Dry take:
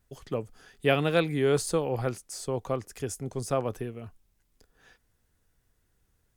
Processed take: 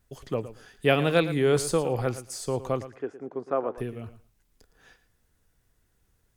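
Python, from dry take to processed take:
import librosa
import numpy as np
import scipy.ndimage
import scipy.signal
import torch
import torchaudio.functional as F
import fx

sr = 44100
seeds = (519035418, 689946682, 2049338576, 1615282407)

y = fx.cheby1_bandpass(x, sr, low_hz=310.0, high_hz=1500.0, order=2, at=(2.86, 3.78))
y = fx.echo_feedback(y, sr, ms=113, feedback_pct=16, wet_db=-14.0)
y = F.gain(torch.from_numpy(y), 2.0).numpy()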